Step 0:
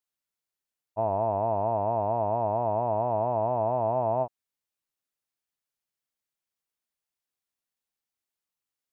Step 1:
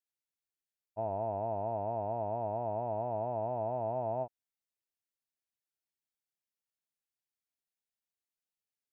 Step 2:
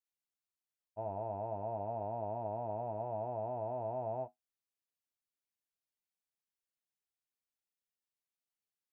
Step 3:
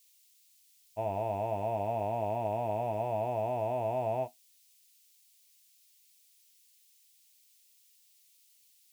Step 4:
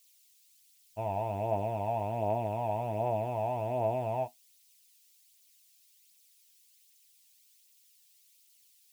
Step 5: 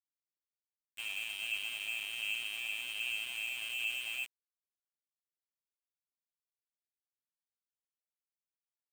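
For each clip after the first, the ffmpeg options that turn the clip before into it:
-af "equalizer=f=1.1k:t=o:w=0.24:g=-14,volume=-7.5dB"
-af "flanger=delay=9.5:depth=1.6:regen=-58:speed=0.41:shape=sinusoidal"
-af "aexciter=amount=6.3:drive=8.2:freq=2.1k,volume=6.5dB"
-af "aphaser=in_gain=1:out_gain=1:delay=1.3:decay=0.35:speed=1.3:type=triangular"
-af "lowpass=f=2.8k:t=q:w=0.5098,lowpass=f=2.8k:t=q:w=0.6013,lowpass=f=2.8k:t=q:w=0.9,lowpass=f=2.8k:t=q:w=2.563,afreqshift=-3300,aeval=exprs='val(0)*gte(abs(val(0)),0.0188)':c=same,volume=-6.5dB"

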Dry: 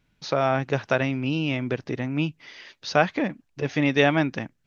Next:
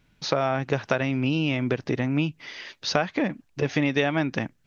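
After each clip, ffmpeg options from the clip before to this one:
-af "acompressor=threshold=-25dB:ratio=5,volume=5dB"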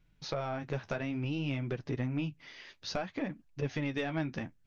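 -af "asoftclip=type=tanh:threshold=-11dB,flanger=delay=5.4:depth=8.2:regen=-36:speed=0.58:shape=triangular,lowshelf=f=110:g=11.5,volume=-7.5dB"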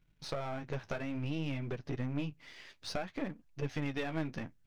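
-af "aeval=exprs='if(lt(val(0),0),0.447*val(0),val(0))':c=same"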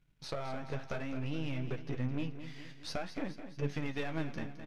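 -af "aecho=1:1:214|428|642|856|1070|1284:0.282|0.149|0.0792|0.042|0.0222|0.0118,aresample=32000,aresample=44100,flanger=delay=6.9:depth=7.2:regen=81:speed=0.55:shape=sinusoidal,volume=3.5dB"

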